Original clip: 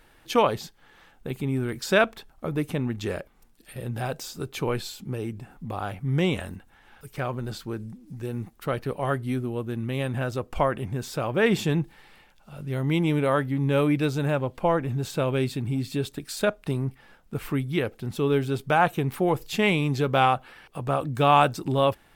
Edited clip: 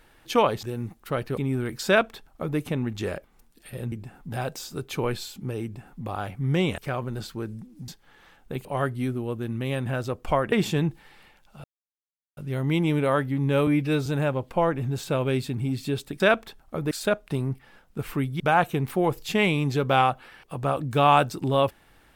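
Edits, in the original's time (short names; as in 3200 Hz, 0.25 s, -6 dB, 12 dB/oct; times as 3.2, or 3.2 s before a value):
0.63–1.4 swap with 8.19–8.93
1.9–2.61 copy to 16.27
5.28–5.67 copy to 3.95
6.42–7.09 cut
10.8–11.45 cut
12.57 insert silence 0.73 s
13.87–14.13 stretch 1.5×
17.76–18.64 cut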